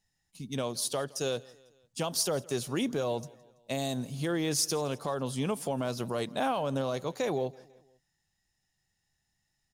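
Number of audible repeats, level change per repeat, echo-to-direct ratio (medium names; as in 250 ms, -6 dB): 2, -6.0 dB, -22.0 dB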